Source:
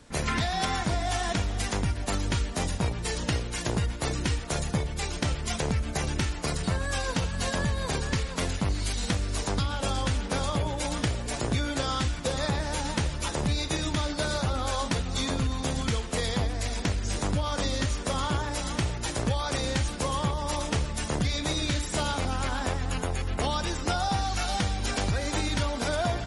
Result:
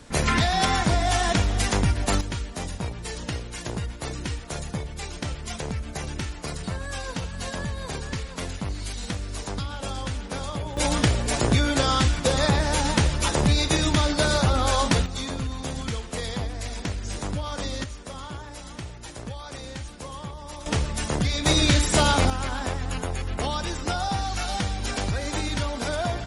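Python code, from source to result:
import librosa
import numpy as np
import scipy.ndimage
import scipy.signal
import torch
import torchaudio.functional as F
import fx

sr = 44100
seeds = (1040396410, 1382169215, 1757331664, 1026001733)

y = fx.gain(x, sr, db=fx.steps((0.0, 6.0), (2.21, -3.0), (10.77, 7.0), (15.06, -2.0), (17.84, -8.5), (20.66, 3.0), (21.46, 9.0), (22.3, 0.5)))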